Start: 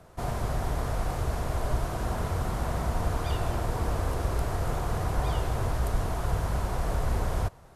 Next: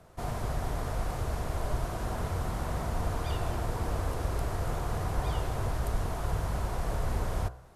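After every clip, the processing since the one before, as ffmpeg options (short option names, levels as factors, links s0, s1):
-af "bandreject=f=62.8:t=h:w=4,bandreject=f=125.6:t=h:w=4,bandreject=f=188.4:t=h:w=4,bandreject=f=251.2:t=h:w=4,bandreject=f=314:t=h:w=4,bandreject=f=376.8:t=h:w=4,bandreject=f=439.6:t=h:w=4,bandreject=f=502.4:t=h:w=4,bandreject=f=565.2:t=h:w=4,bandreject=f=628:t=h:w=4,bandreject=f=690.8:t=h:w=4,bandreject=f=753.6:t=h:w=4,bandreject=f=816.4:t=h:w=4,bandreject=f=879.2:t=h:w=4,bandreject=f=942:t=h:w=4,bandreject=f=1004.8:t=h:w=4,bandreject=f=1067.6:t=h:w=4,bandreject=f=1130.4:t=h:w=4,bandreject=f=1193.2:t=h:w=4,bandreject=f=1256:t=h:w=4,bandreject=f=1318.8:t=h:w=4,bandreject=f=1381.6:t=h:w=4,bandreject=f=1444.4:t=h:w=4,bandreject=f=1507.2:t=h:w=4,bandreject=f=1570:t=h:w=4,bandreject=f=1632.8:t=h:w=4,bandreject=f=1695.6:t=h:w=4,volume=0.75"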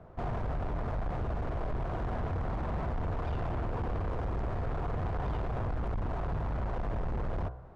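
-filter_complex "[0:a]asplit=2[s0][s1];[s1]acompressor=threshold=0.0158:ratio=6,volume=0.794[s2];[s0][s2]amix=inputs=2:normalize=0,asoftclip=type=hard:threshold=0.0335,adynamicsmooth=sensitivity=2:basefreq=1500"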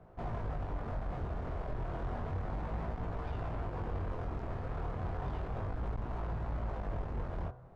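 -af "flanger=delay=17.5:depth=7.2:speed=0.32,volume=0.841"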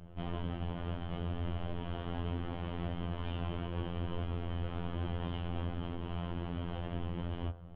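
-filter_complex "[0:a]acrossover=split=320|1100[s0][s1][s2];[s0]aeval=exprs='0.0316*sin(PI/2*2.24*val(0)/0.0316)':c=same[s3];[s3][s1][s2]amix=inputs=3:normalize=0,lowpass=f=3100:t=q:w=12,afftfilt=real='hypot(re,im)*cos(PI*b)':imag='0':win_size=2048:overlap=0.75"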